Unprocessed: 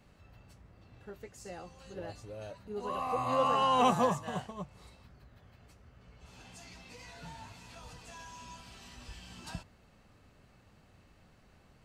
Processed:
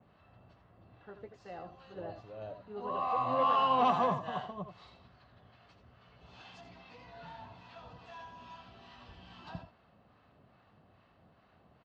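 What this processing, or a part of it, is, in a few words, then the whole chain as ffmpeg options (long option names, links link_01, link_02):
guitar amplifier with harmonic tremolo: -filter_complex "[0:a]acrossover=split=730[link_01][link_02];[link_01]aeval=exprs='val(0)*(1-0.5/2+0.5/2*cos(2*PI*2.4*n/s))':channel_layout=same[link_03];[link_02]aeval=exprs='val(0)*(1-0.5/2-0.5/2*cos(2*PI*2.4*n/s))':channel_layout=same[link_04];[link_03][link_04]amix=inputs=2:normalize=0,asoftclip=type=tanh:threshold=-25dB,highpass=88,equalizer=frequency=700:width_type=q:width=4:gain=6,equalizer=frequency=1100:width_type=q:width=4:gain=5,equalizer=frequency=2300:width_type=q:width=4:gain=-5,lowpass=frequency=3800:width=0.5412,lowpass=frequency=3800:width=1.3066,asettb=1/sr,asplit=3[link_05][link_06][link_07];[link_05]atrim=end=4.684[link_08];[link_06]atrim=start=4.68:end=6.61,asetpts=PTS-STARTPTS,afade=type=in:duration=0.004:curve=qsin,afade=type=out:start_time=1.926:duration=0.004:curve=qsin,highshelf=frequency=2700:gain=10.5[link_09];[link_07]atrim=start=6.606[link_10];[link_08][link_09]acrossfade=duration=0.004:curve1=hsin:curve2=qsin[link_11];[link_11][link_10]acrossfade=duration=0.004:curve1=qsin:curve2=hsin,aecho=1:1:80|83:0.133|0.316,adynamicequalizer=threshold=0.00562:dfrequency=3000:dqfactor=0.7:tfrequency=3000:tqfactor=0.7:attack=5:release=100:ratio=0.375:range=2.5:mode=boostabove:tftype=highshelf"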